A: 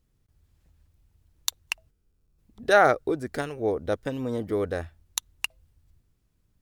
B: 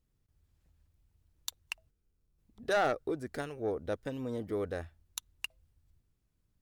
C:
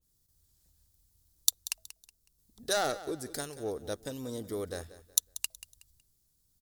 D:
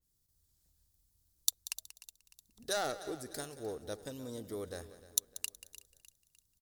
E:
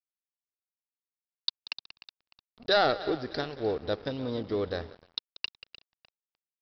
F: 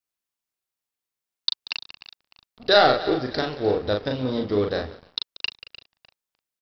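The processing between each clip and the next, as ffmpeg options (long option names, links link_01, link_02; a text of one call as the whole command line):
ffmpeg -i in.wav -af "asoftclip=type=tanh:threshold=-15dB,volume=-7dB" out.wav
ffmpeg -i in.wav -af "aecho=1:1:185|370|555:0.168|0.052|0.0161,aexciter=amount=6.4:drive=4.3:freq=3700,adynamicequalizer=threshold=0.00794:dfrequency=2000:dqfactor=0.7:tfrequency=2000:tqfactor=0.7:attack=5:release=100:ratio=0.375:range=2:mode=cutabove:tftype=highshelf,volume=-2dB" out.wav
ffmpeg -i in.wav -af "aecho=1:1:302|604|906|1208:0.15|0.0658|0.029|0.0127,volume=-5dB" out.wav
ffmpeg -i in.wav -af "dynaudnorm=framelen=100:gausssize=5:maxgain=12dB,aresample=11025,aeval=exprs='sgn(val(0))*max(abs(val(0))-0.00473,0)':channel_layout=same,aresample=44100" out.wav
ffmpeg -i in.wav -filter_complex "[0:a]asplit=2[link_01][link_02];[link_02]adelay=39,volume=-4dB[link_03];[link_01][link_03]amix=inputs=2:normalize=0,volume=6dB" out.wav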